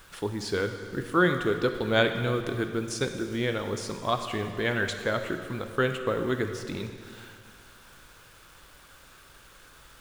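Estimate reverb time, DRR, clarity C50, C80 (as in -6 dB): 2.2 s, 6.0 dB, 7.5 dB, 8.5 dB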